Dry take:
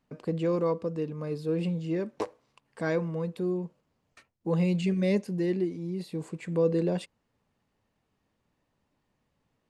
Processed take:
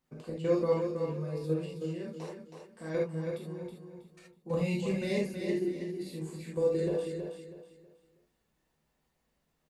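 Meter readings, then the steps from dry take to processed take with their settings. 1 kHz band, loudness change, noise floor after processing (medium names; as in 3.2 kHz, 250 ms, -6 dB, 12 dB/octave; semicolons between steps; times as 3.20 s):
-4.5 dB, -3.5 dB, -78 dBFS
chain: treble shelf 7.1 kHz +10.5 dB; level held to a coarse grid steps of 13 dB; feedback delay 322 ms, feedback 30%, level -6.5 dB; gated-style reverb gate 100 ms flat, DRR -5 dB; trim -6 dB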